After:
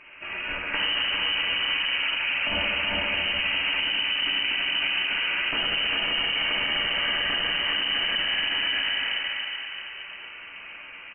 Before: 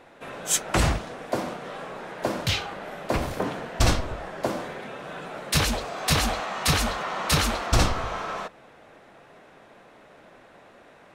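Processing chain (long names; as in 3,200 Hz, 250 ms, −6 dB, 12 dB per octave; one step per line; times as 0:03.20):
bouncing-ball delay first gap 400 ms, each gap 0.6×, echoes 5
downward compressor, threshold −24 dBFS, peak gain reduction 10 dB
convolution reverb RT60 3.5 s, pre-delay 3 ms, DRR −5.5 dB
voice inversion scrambler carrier 3,000 Hz
brickwall limiter −17 dBFS, peak gain reduction 10.5 dB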